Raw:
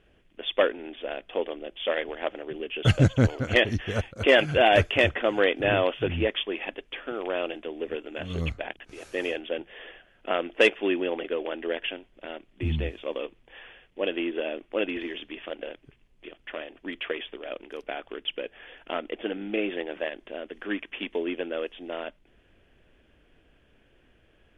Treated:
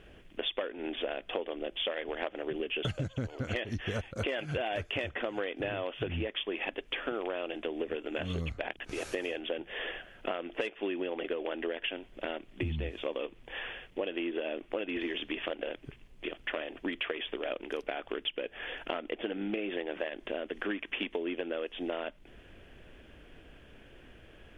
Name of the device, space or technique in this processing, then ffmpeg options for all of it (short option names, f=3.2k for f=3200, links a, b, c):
serial compression, leveller first: -af "acompressor=threshold=-28dB:ratio=2.5,acompressor=threshold=-39dB:ratio=6,volume=7.5dB"